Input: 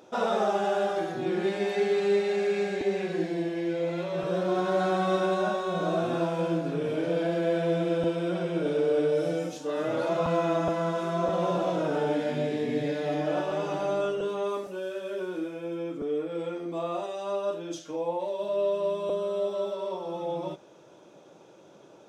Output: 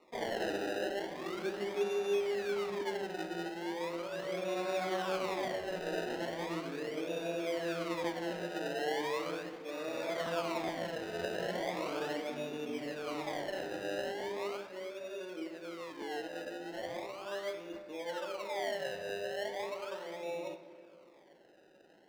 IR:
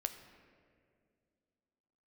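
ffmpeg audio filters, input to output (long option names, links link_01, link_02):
-filter_complex "[0:a]acrusher=samples=27:mix=1:aa=0.000001:lfo=1:lforange=27:lforate=0.38,acrossover=split=200 5500:gain=0.178 1 0.251[link_01][link_02][link_03];[link_01][link_02][link_03]amix=inputs=3:normalize=0[link_04];[1:a]atrim=start_sample=2205[link_05];[link_04][link_05]afir=irnorm=-1:irlink=0,volume=-8.5dB"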